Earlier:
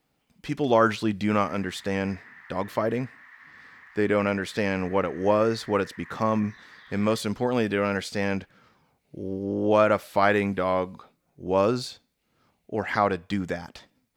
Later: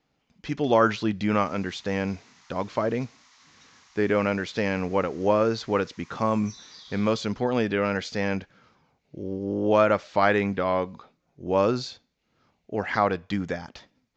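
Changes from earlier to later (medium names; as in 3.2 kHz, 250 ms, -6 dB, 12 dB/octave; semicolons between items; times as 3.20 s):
background: remove resonant low-pass 1.8 kHz, resonance Q 9; master: add steep low-pass 7 kHz 72 dB/octave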